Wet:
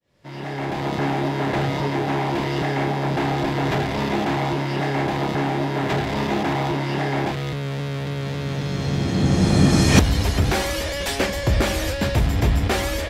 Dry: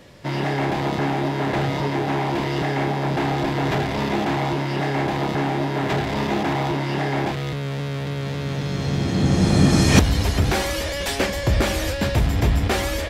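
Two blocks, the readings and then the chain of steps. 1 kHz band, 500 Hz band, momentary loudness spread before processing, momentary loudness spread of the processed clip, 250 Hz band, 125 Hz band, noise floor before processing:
0.0 dB, 0.0 dB, 9 LU, 10 LU, 0.0 dB, 0.0 dB, -27 dBFS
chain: fade-in on the opening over 1.05 s

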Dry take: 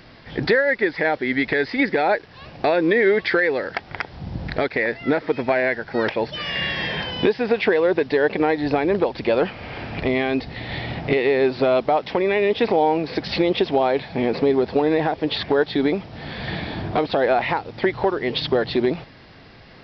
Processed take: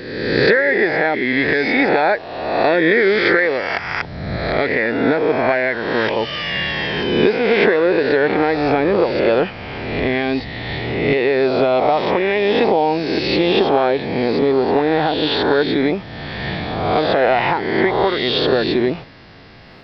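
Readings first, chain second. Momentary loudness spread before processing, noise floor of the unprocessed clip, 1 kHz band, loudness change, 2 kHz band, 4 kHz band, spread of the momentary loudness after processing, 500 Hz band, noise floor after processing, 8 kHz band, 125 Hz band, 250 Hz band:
10 LU, -46 dBFS, +5.0 dB, +4.5 dB, +5.5 dB, +5.5 dB, 8 LU, +4.0 dB, -33 dBFS, no reading, +4.5 dB, +4.0 dB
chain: reverse spectral sustain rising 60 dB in 1.27 s; trim +1 dB

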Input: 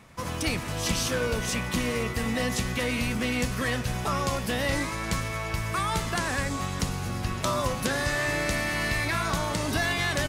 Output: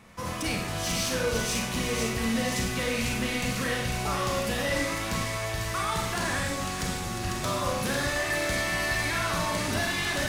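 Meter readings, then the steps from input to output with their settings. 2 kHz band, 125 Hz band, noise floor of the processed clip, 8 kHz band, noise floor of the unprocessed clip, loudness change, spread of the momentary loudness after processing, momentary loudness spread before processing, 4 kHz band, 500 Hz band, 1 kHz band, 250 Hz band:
-0.5 dB, -2.5 dB, -33 dBFS, +1.5 dB, -33 dBFS, -0.5 dB, 4 LU, 4 LU, +1.0 dB, 0.0 dB, -0.5 dB, -1.0 dB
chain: saturation -22.5 dBFS, distortion -16 dB; on a send: feedback echo behind a high-pass 498 ms, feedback 62%, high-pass 2.6 kHz, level -4 dB; on the sum: Schroeder reverb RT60 0.64 s, combs from 31 ms, DRR 0.5 dB; trim -1.5 dB

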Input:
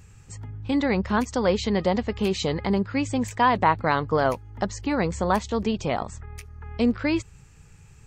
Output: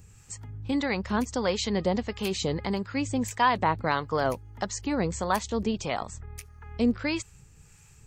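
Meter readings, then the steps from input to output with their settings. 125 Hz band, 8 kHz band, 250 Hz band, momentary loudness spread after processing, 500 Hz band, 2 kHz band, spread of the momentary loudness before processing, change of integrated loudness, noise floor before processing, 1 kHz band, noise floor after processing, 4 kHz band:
-4.5 dB, +2.5 dB, -4.0 dB, 15 LU, -4.5 dB, -3.0 dB, 15 LU, -4.0 dB, -51 dBFS, -4.0 dB, -55 dBFS, -0.5 dB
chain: treble shelf 5.4 kHz +10.5 dB; harmonic tremolo 1.6 Hz, depth 50%, crossover 660 Hz; trim -2 dB

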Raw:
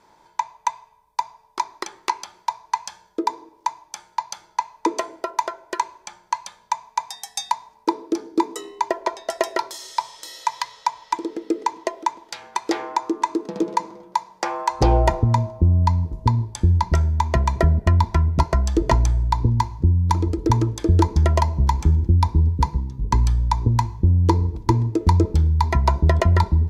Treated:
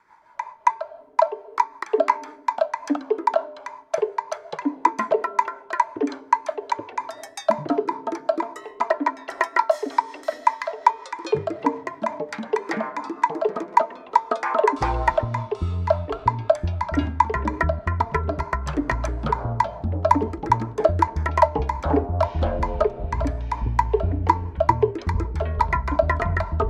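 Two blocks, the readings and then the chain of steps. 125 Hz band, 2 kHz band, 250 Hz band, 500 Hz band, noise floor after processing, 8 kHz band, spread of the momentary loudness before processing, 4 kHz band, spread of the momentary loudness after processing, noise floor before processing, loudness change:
-9.0 dB, +4.0 dB, -3.0 dB, +5.0 dB, -46 dBFS, -10.0 dB, 11 LU, -7.5 dB, 7 LU, -57 dBFS, -1.5 dB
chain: rotary cabinet horn 5.5 Hz; high-order bell 1.4 kHz +15 dB; de-hum 225.9 Hz, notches 7; ever faster or slower copies 217 ms, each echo -7 st, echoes 3; trim -8 dB

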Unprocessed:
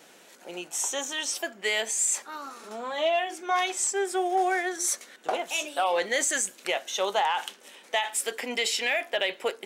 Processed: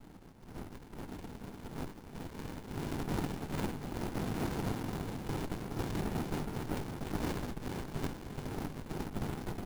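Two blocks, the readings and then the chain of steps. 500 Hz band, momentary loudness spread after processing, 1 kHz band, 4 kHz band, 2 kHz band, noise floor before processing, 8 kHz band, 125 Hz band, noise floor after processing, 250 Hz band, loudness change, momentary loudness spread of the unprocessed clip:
-13.5 dB, 11 LU, -15.5 dB, -19.0 dB, -18.5 dB, -54 dBFS, -24.5 dB, no reading, -53 dBFS, +1.5 dB, -12.5 dB, 8 LU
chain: low-pass 1.1 kHz 24 dB/octave; harmonic-percussive split harmonic -14 dB; slow attack 157 ms; peak limiter -36 dBFS, peak gain reduction 10 dB; hard clipper -40 dBFS, distortion -17 dB; noise-vocoded speech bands 2; doubling 20 ms -9 dB; bouncing-ball echo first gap 420 ms, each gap 0.75×, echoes 5; careless resampling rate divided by 4×, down none, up hold; sliding maximum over 65 samples; trim +11.5 dB

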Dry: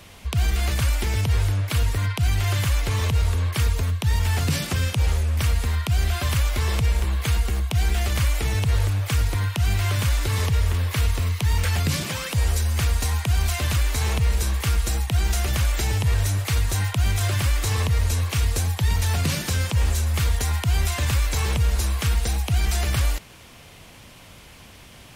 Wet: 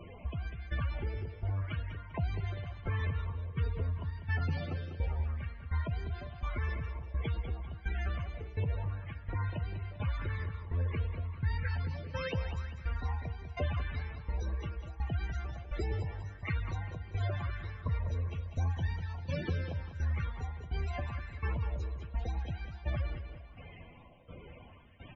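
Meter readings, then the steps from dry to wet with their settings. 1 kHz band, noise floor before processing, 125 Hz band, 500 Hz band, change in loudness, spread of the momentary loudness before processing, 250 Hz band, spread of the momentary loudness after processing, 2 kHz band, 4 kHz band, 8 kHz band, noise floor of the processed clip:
-12.5 dB, -46 dBFS, -13.0 dB, -10.0 dB, -14.0 dB, 1 LU, -11.5 dB, 6 LU, -13.5 dB, -22.5 dB, under -35 dB, -51 dBFS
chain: low-pass 7 kHz 24 dB/octave; treble shelf 4.1 kHz -5 dB; compression, threshold -29 dBFS, peak gain reduction 12 dB; tremolo saw down 1.4 Hz, depth 95%; loudest bins only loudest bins 32; doubling 12 ms -11.5 dB; feedback delay 197 ms, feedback 43%, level -9 dB; sweeping bell 0.82 Hz 400–1800 Hz +9 dB; trim -1 dB

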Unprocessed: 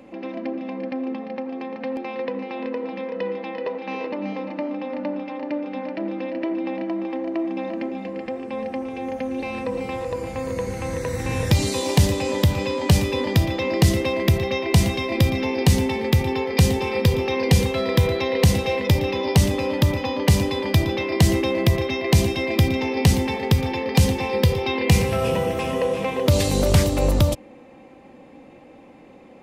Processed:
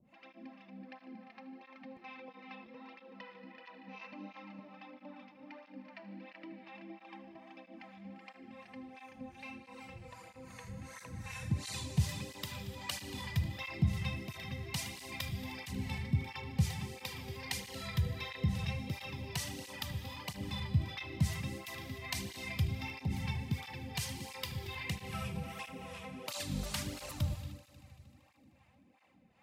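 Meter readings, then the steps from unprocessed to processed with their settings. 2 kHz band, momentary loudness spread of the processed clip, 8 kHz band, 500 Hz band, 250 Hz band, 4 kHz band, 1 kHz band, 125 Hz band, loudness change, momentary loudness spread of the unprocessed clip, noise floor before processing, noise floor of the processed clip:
-15.5 dB, 17 LU, -15.0 dB, -27.5 dB, -19.5 dB, -15.0 dB, -19.0 dB, -16.5 dB, -17.0 dB, 10 LU, -46 dBFS, -63 dBFS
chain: peaking EQ 430 Hz -15 dB 1.1 oct; harmonic tremolo 2.6 Hz, depth 100%, crossover 570 Hz; on a send: multi-head delay 77 ms, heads first and third, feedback 68%, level -18 dB; on the sum: gated-style reverb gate 320 ms flat, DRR 7.5 dB; cancelling through-zero flanger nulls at 1.5 Hz, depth 3.9 ms; trim -8.5 dB

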